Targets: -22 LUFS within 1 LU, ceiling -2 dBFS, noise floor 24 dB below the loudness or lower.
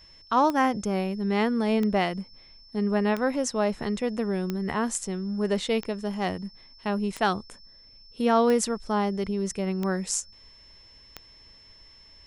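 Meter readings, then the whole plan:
clicks found 9; steady tone 5.3 kHz; tone level -51 dBFS; loudness -27.0 LUFS; peak level -9.5 dBFS; loudness target -22.0 LUFS
-> de-click; band-stop 5.3 kHz, Q 30; trim +5 dB

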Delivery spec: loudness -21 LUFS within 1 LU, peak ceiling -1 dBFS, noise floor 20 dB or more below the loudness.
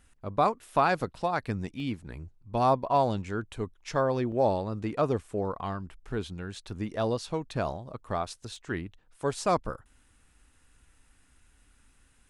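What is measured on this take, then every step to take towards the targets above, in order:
dropouts 3; longest dropout 1.7 ms; loudness -30.5 LUFS; peak level -11.0 dBFS; loudness target -21.0 LUFS
-> interpolate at 1.80/4.32/8.56 s, 1.7 ms; trim +9.5 dB

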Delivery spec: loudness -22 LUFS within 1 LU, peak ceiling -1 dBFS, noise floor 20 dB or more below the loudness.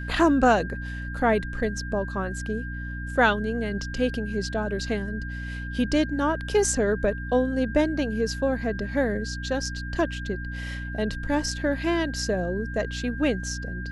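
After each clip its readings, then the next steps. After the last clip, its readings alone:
hum 60 Hz; highest harmonic 300 Hz; hum level -31 dBFS; steady tone 1.6 kHz; tone level -37 dBFS; loudness -26.5 LUFS; peak level -7.0 dBFS; loudness target -22.0 LUFS
-> hum notches 60/120/180/240/300 Hz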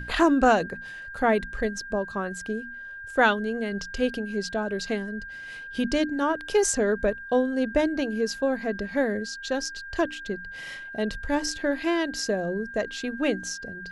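hum not found; steady tone 1.6 kHz; tone level -37 dBFS
-> band-stop 1.6 kHz, Q 30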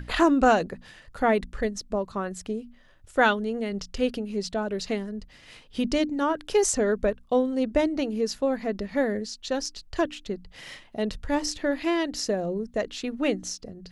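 steady tone not found; loudness -27.0 LUFS; peak level -7.0 dBFS; loudness target -22.0 LUFS
-> trim +5 dB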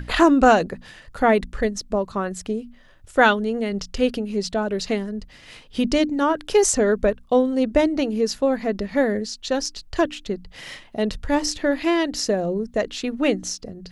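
loudness -22.0 LUFS; peak level -2.0 dBFS; noise floor -49 dBFS

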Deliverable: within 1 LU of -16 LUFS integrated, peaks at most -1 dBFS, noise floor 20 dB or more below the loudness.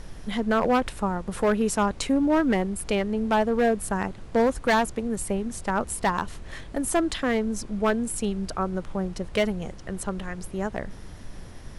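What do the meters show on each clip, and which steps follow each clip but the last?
clipped samples 1.3%; clipping level -16.0 dBFS; noise floor -42 dBFS; noise floor target -46 dBFS; loudness -26.0 LUFS; peak level -16.0 dBFS; loudness target -16.0 LUFS
-> clip repair -16 dBFS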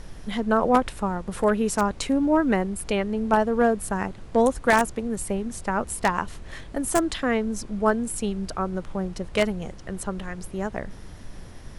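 clipped samples 0.0%; noise floor -42 dBFS; noise floor target -45 dBFS
-> noise print and reduce 6 dB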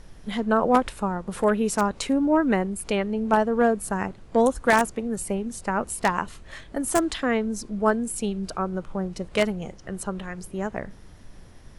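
noise floor -47 dBFS; loudness -25.0 LUFS; peak level -7.0 dBFS; loudness target -16.0 LUFS
-> trim +9 dB; peak limiter -1 dBFS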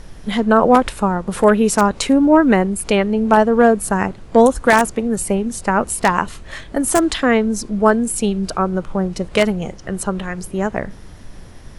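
loudness -16.5 LUFS; peak level -1.0 dBFS; noise floor -38 dBFS

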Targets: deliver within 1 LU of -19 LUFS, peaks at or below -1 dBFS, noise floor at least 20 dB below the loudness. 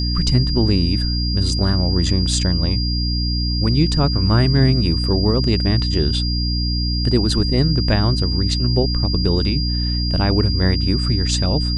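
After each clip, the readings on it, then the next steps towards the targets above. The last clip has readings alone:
hum 60 Hz; highest harmonic 300 Hz; hum level -18 dBFS; steady tone 4.8 kHz; tone level -24 dBFS; loudness -18.0 LUFS; peak level -3.0 dBFS; loudness target -19.0 LUFS
-> hum notches 60/120/180/240/300 Hz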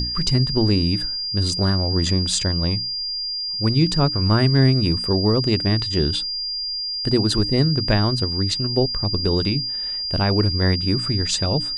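hum not found; steady tone 4.8 kHz; tone level -24 dBFS
-> band-stop 4.8 kHz, Q 30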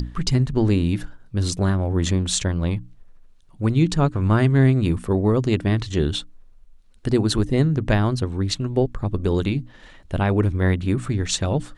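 steady tone not found; loudness -21.5 LUFS; peak level -5.5 dBFS; loudness target -19.0 LUFS
-> trim +2.5 dB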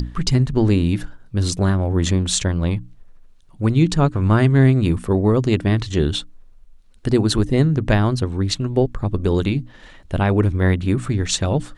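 loudness -19.0 LUFS; peak level -3.0 dBFS; noise floor -47 dBFS

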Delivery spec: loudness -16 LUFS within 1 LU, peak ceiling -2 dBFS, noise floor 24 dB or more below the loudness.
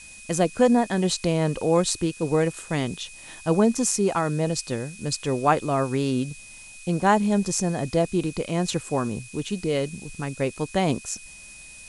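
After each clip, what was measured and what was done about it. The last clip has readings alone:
steady tone 2.5 kHz; tone level -45 dBFS; noise floor -44 dBFS; noise floor target -49 dBFS; loudness -24.5 LUFS; peak level -6.5 dBFS; loudness target -16.0 LUFS
-> band-stop 2.5 kHz, Q 30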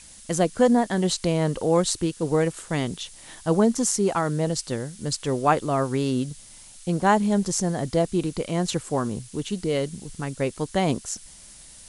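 steady tone not found; noise floor -47 dBFS; noise floor target -49 dBFS
-> noise print and reduce 6 dB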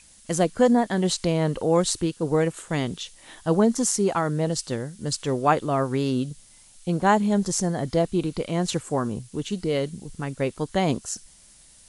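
noise floor -53 dBFS; loudness -24.5 LUFS; peak level -6.5 dBFS; loudness target -16.0 LUFS
-> trim +8.5 dB; peak limiter -2 dBFS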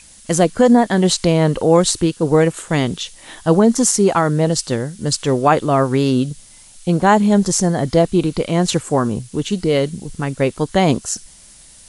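loudness -16.5 LUFS; peak level -2.0 dBFS; noise floor -44 dBFS

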